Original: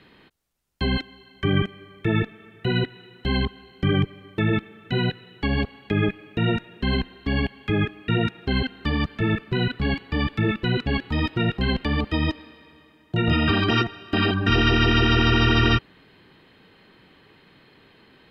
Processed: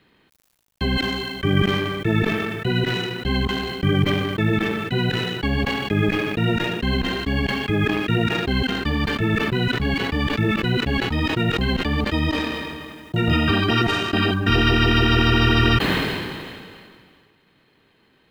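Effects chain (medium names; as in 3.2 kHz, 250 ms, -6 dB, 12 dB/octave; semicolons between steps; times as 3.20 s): companding laws mixed up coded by A; decay stretcher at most 28 dB/s; trim +1.5 dB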